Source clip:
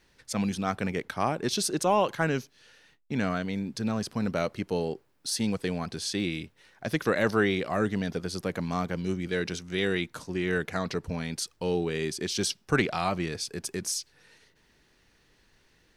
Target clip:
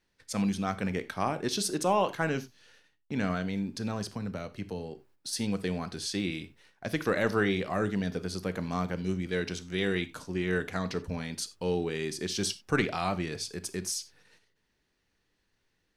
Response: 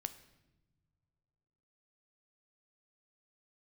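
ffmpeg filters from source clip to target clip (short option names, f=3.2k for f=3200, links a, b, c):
-filter_complex "[0:a]agate=range=-10dB:threshold=-57dB:ratio=16:detection=peak,asettb=1/sr,asplit=3[a][b][c];[a]atrim=end=4.134[d];[b]atrim=start=4.13:end=5.33,asetpts=PTS-STARTPTS,afade=t=in:d=0.004:c=qsin,afade=t=out:st=1.196:d=0.004:c=qsin,acrossover=split=140[e][f];[f]acompressor=threshold=-33dB:ratio=6[g];[e][g]amix=inputs=2:normalize=0[h];[c]atrim=start=5.326[i];[d][h]acrossfade=d=0.004:c1=hsin:c2=qsin[j];[j][i]acrossfade=d=0.004:c1=qsin:c2=hsin[k];[1:a]atrim=start_sample=2205,atrim=end_sample=4410[l];[k][l]afir=irnorm=-1:irlink=0"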